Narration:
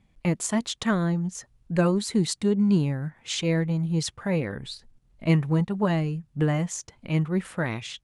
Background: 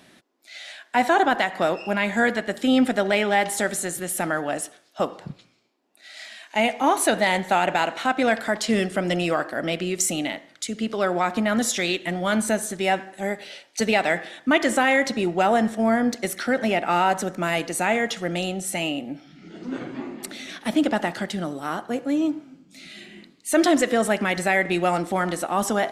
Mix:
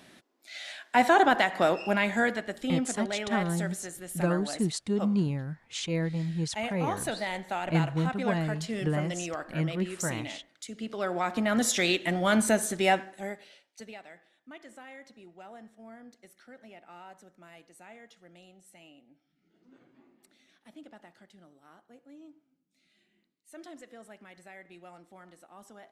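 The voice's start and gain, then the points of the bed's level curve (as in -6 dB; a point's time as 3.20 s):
2.45 s, -5.5 dB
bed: 1.92 s -2 dB
2.83 s -12.5 dB
10.60 s -12.5 dB
11.82 s -1.5 dB
12.90 s -1.5 dB
14.10 s -28.5 dB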